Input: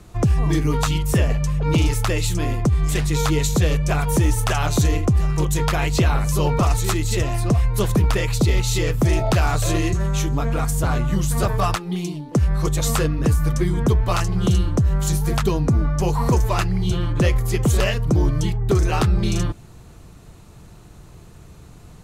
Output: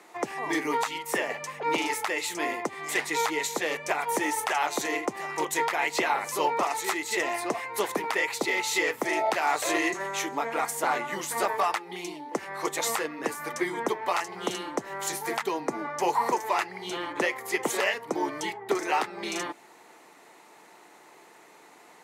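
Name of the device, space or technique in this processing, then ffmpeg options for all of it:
laptop speaker: -af "highpass=f=310:w=0.5412,highpass=f=310:w=1.3066,equalizer=f=870:t=o:w=0.5:g=9.5,equalizer=f=2k:t=o:w=0.49:g=11.5,alimiter=limit=-10.5dB:level=0:latency=1:release=377,volume=-4dB"

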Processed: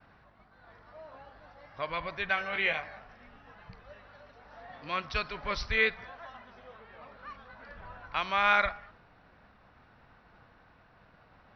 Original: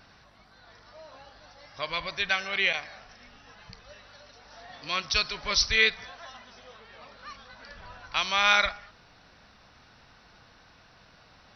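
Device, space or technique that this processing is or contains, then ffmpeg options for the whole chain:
hearing-loss simulation: -filter_complex "[0:a]asettb=1/sr,asplit=3[a][b][c];[a]atrim=end=2.354[d];[b]atrim=start=2.35:end=2.99,asetpts=PTS-STARTPTS,afade=t=in:d=0.004:c=qsin,afade=t=out:st=0.636:d=0.004:c=qsin,asplit=2[e][f];[f]adelay=19,volume=-5dB[g];[e][g]amix=inputs=2:normalize=0,atrim=end_sample=28224[h];[c]atrim=start=2.986[i];[d][h]acrossfade=d=0.004:c1=hsin:c2=qsin[j];[j][i]acrossfade=d=0.004:c1=qsin:c2=hsin,lowpass=1.9k,agate=range=-33dB:threshold=-55dB:ratio=3:detection=peak"

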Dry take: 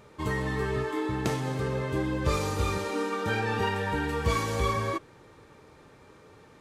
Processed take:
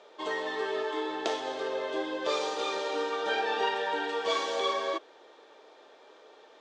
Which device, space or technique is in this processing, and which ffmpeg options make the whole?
phone speaker on a table: -af "highpass=f=370:w=0.5412,highpass=f=370:w=1.3066,equalizer=f=680:t=q:w=4:g=8,equalizer=f=1.2k:t=q:w=4:g=-3,equalizer=f=2.2k:t=q:w=4:g=-4,equalizer=f=3.4k:t=q:w=4:g=8,lowpass=f=6.4k:w=0.5412,lowpass=f=6.4k:w=1.3066"

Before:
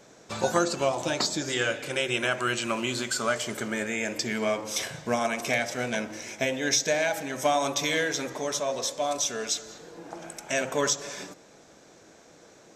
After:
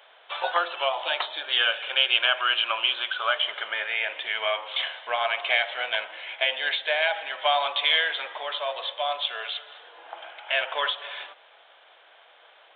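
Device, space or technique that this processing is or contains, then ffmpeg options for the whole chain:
musical greeting card: -filter_complex "[0:a]asettb=1/sr,asplit=3[a][b][c];[a]atrim=end=1.384[d];[b]atrim=start=1.38:end=3.41,asetpts=PTS-STARTPTS,afade=t=in:d=0.004:c=qsin,afade=t=out:st=2.026:d=0.004:c=qsin,bandreject=f=2k:w=11[e];[c]atrim=start=3.406[f];[d][e]acrossfade=d=0.004:c1=hsin:c2=qsin[g];[g][f]acrossfade=d=0.004:c1=qsin:c2=hsin,aresample=8000,aresample=44100,highpass=f=700:w=0.5412,highpass=f=700:w=1.3066,equalizer=f=3.1k:t=o:w=0.29:g=10,volume=4dB"

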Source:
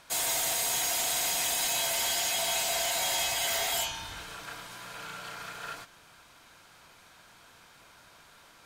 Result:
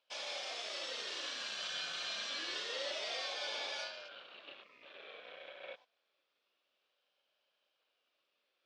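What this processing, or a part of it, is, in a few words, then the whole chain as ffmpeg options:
voice changer toy: -af "afwtdn=0.00794,aeval=exprs='val(0)*sin(2*PI*1200*n/s+1200*0.3/0.27*sin(2*PI*0.27*n/s))':c=same,highpass=520,equalizer=f=560:t=q:w=4:g=7,equalizer=f=890:t=q:w=4:g=-6,equalizer=f=2k:t=q:w=4:g=-7,equalizer=f=3.3k:t=q:w=4:g=4,lowpass=f=4.7k:w=0.5412,lowpass=f=4.7k:w=1.3066,volume=-4.5dB"

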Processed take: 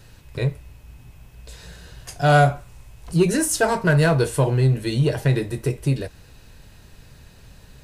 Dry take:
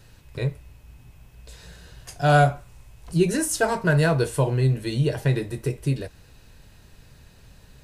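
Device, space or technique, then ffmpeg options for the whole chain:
parallel distortion: -filter_complex "[0:a]asplit=2[a][b];[b]asoftclip=type=hard:threshold=-19.5dB,volume=-6dB[c];[a][c]amix=inputs=2:normalize=0"

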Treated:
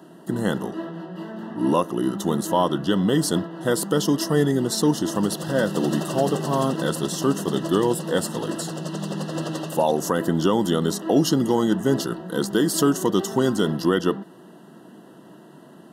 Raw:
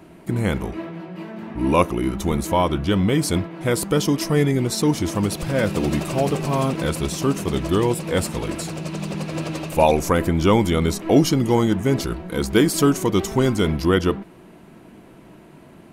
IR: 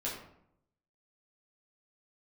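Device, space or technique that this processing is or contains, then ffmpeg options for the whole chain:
PA system with an anti-feedback notch: -af "highpass=f=150:w=0.5412,highpass=f=150:w=1.3066,asuperstop=centerf=2300:order=12:qfactor=3.2,alimiter=limit=-8.5dB:level=0:latency=1:release=183"

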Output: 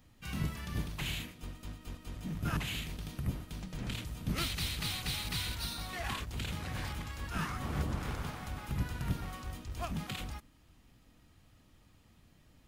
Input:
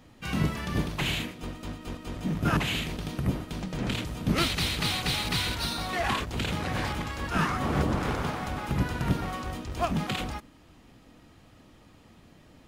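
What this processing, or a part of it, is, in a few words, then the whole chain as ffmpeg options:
smiley-face EQ: -af "lowshelf=f=130:g=6,equalizer=f=430:t=o:w=2.8:g=-5.5,highshelf=f=9.9k:g=9,volume=-8.5dB"

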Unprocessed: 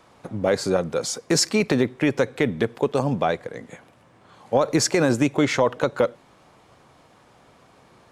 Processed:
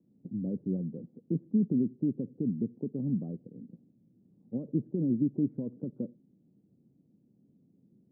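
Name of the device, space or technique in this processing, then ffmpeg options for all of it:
the neighbour's flat through the wall: -af "highpass=230,lowpass=f=250:w=0.5412,lowpass=f=250:w=1.3066,equalizer=f=190:t=o:w=0.6:g=4"

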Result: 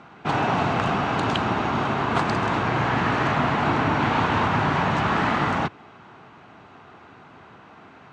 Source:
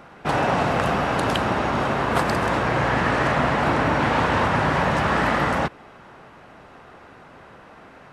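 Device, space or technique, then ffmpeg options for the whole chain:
car door speaker: -af "highpass=94,equalizer=f=100:t=q:w=4:g=4,equalizer=f=540:t=q:w=4:g=-9,equalizer=f=1.8k:t=q:w=4:g=-4,equalizer=f=5.2k:t=q:w=4:g=-5,lowpass=f=6.7k:w=0.5412,lowpass=f=6.7k:w=1.3066"

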